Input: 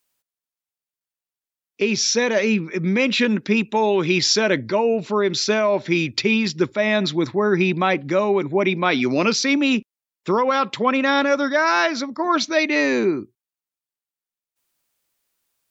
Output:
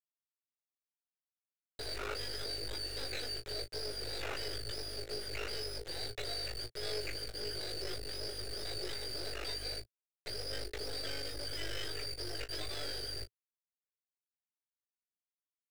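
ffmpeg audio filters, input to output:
-filter_complex "[0:a]afftfilt=real='real(if(lt(b,272),68*(eq(floor(b/68),0)*3+eq(floor(b/68),1)*2+eq(floor(b/68),2)*1+eq(floor(b/68),3)*0)+mod(b,68),b),0)':imag='imag(if(lt(b,272),68*(eq(floor(b/68),0)*3+eq(floor(b/68),1)*2+eq(floor(b/68),2)*1+eq(floor(b/68),3)*0)+mod(b,68),b),0)':win_size=2048:overlap=0.75,aderivative,acontrast=31,alimiter=limit=-13dB:level=0:latency=1:release=494,acompressor=threshold=-37dB:ratio=3,aeval=exprs='val(0)*sin(2*PI*25*n/s)':c=same,aresample=11025,asoftclip=type=hard:threshold=-35.5dB,aresample=44100,acrusher=bits=5:dc=4:mix=0:aa=0.000001,asplit=2[a][b];[b]highpass=f=720:p=1,volume=22dB,asoftclip=type=tanh:threshold=-29.5dB[c];[a][c]amix=inputs=2:normalize=0,lowpass=f=2.5k:p=1,volume=-6dB,firequalizer=gain_entry='entry(110,0);entry(180,-20);entry(410,5);entry(1000,-19);entry(1500,-7);entry(2600,-12)':delay=0.05:min_phase=1,aecho=1:1:19|36:0.473|0.188,volume=11dB"

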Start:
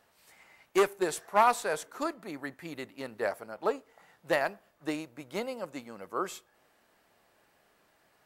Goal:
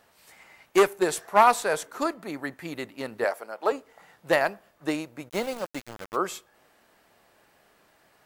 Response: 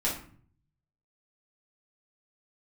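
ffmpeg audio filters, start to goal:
-filter_complex "[0:a]asettb=1/sr,asplit=3[a][b][c];[a]atrim=end=3.244[d];[b]atrim=start=3.24:end=3.72,asetpts=PTS-STARTPTS,afade=t=in:d=0.004:c=qsin,afade=t=out:st=0.476:d=0.004:c=qsin,highpass=380[e];[c]atrim=start=3.716[f];[d][e]acrossfade=d=0.004:c1=hsin:c2=qsin[g];[g][f]acrossfade=d=0.004:c1=qsin:c2=hsin,asplit=3[h][i][j];[h]afade=t=out:st=5.28:d=0.02[k];[i]aeval=exprs='val(0)*gte(abs(val(0)),0.00944)':c=same,afade=t=in:st=5.28:d=0.02,afade=t=out:st=6.15:d=0.02[l];[j]afade=t=in:st=6.15:d=0.02[m];[k][l][m]amix=inputs=3:normalize=0,volume=5.5dB"

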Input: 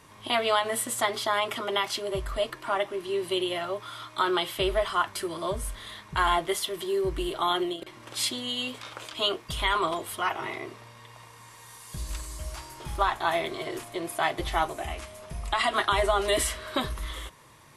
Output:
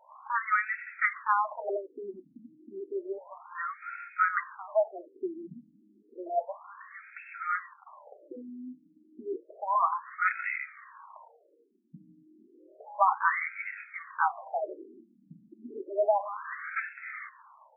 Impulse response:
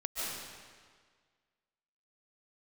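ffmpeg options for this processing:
-af "tiltshelf=f=670:g=-5,afftfilt=real='re*between(b*sr/1024,230*pow(1900/230,0.5+0.5*sin(2*PI*0.31*pts/sr))/1.41,230*pow(1900/230,0.5+0.5*sin(2*PI*0.31*pts/sr))*1.41)':imag='im*between(b*sr/1024,230*pow(1900/230,0.5+0.5*sin(2*PI*0.31*pts/sr))/1.41,230*pow(1900/230,0.5+0.5*sin(2*PI*0.31*pts/sr))*1.41)':win_size=1024:overlap=0.75,volume=1.5dB"

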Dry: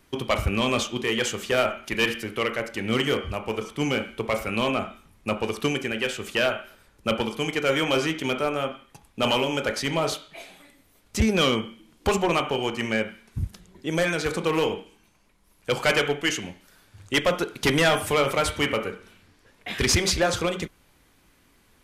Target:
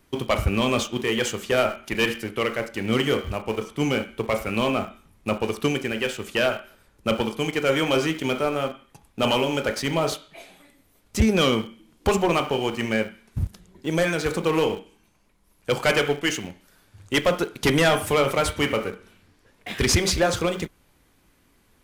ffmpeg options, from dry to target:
-filter_complex "[0:a]equalizer=f=3.2k:w=0.3:g=-3,asplit=2[a][b];[b]aeval=exprs='val(0)*gte(abs(val(0)),0.0266)':c=same,volume=-9dB[c];[a][c]amix=inputs=2:normalize=0"

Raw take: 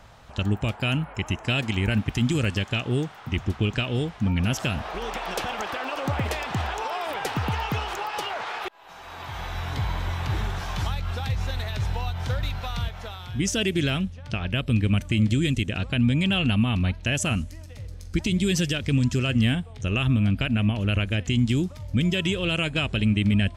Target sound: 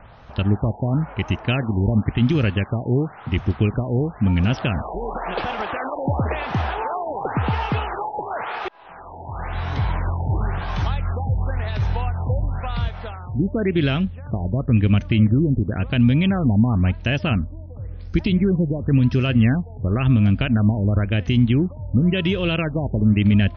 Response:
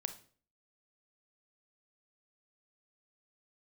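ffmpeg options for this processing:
-af "aemphasis=mode=reproduction:type=75fm,afftfilt=real='re*lt(b*sr/1024,940*pow(6600/940,0.5+0.5*sin(2*PI*0.95*pts/sr)))':imag='im*lt(b*sr/1024,940*pow(6600/940,0.5+0.5*sin(2*PI*0.95*pts/sr)))':win_size=1024:overlap=0.75,volume=4.5dB"

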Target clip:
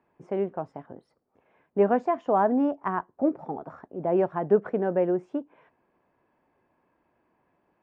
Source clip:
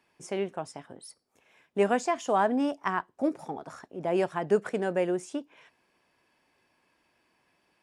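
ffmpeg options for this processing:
-af "lowpass=1.1k,volume=3.5dB"

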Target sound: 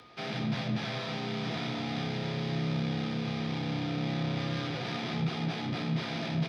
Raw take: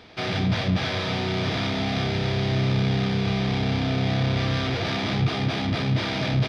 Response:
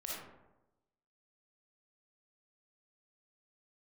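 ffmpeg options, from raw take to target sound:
-filter_complex "[0:a]acompressor=mode=upward:threshold=-44dB:ratio=2.5,aeval=exprs='val(0)+0.00447*sin(2*PI*1200*n/s)':c=same,afreqshift=30,asplit=2[a][b];[1:a]atrim=start_sample=2205,adelay=18[c];[b][c]afir=irnorm=-1:irlink=0,volume=-9dB[d];[a][d]amix=inputs=2:normalize=0,volume=-9dB" -ar 48000 -c:a libmp3lame -b:a 128k

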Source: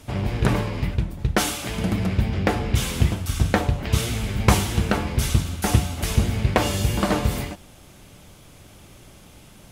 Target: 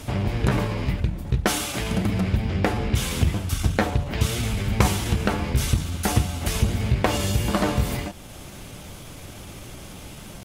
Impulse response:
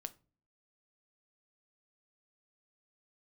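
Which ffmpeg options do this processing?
-af "acompressor=threshold=-44dB:ratio=1.5,atempo=0.93,volume=8.5dB"

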